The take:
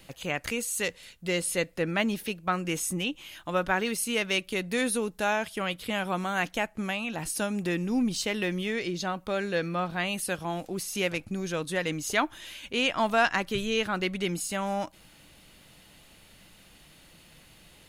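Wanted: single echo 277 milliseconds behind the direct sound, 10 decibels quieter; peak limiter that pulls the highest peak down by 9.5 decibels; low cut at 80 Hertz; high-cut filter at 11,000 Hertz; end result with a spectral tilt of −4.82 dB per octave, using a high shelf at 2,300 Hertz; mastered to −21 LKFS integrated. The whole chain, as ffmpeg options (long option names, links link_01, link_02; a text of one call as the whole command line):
ffmpeg -i in.wav -af "highpass=80,lowpass=11000,highshelf=frequency=2300:gain=-7.5,alimiter=limit=-23.5dB:level=0:latency=1,aecho=1:1:277:0.316,volume=12.5dB" out.wav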